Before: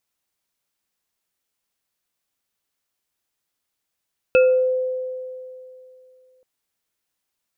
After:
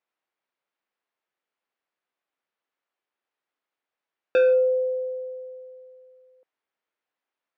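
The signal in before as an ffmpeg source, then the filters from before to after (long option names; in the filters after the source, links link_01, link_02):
-f lavfi -i "aevalsrc='0.316*pow(10,-3*t/2.72)*sin(2*PI*512*t)+0.075*pow(10,-3*t/0.45)*sin(2*PI*1400*t)+0.141*pow(10,-3*t/0.35)*sin(2*PI*2600*t)':duration=2.08:sample_rate=44100"
-af "asoftclip=type=hard:threshold=-14.5dB,highpass=330,lowpass=2200"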